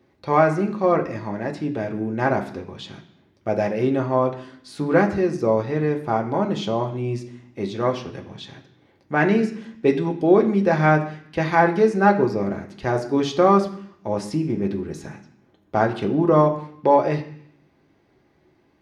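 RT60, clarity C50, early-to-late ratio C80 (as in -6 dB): 0.65 s, 11.5 dB, 14.0 dB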